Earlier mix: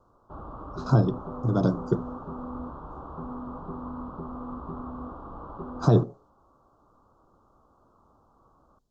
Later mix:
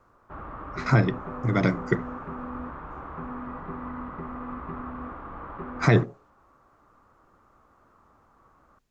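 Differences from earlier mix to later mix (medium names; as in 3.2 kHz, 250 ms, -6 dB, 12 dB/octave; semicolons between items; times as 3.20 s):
speech: add treble shelf 5.3 kHz +7.5 dB; master: remove Butterworth band-stop 2.1 kHz, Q 0.75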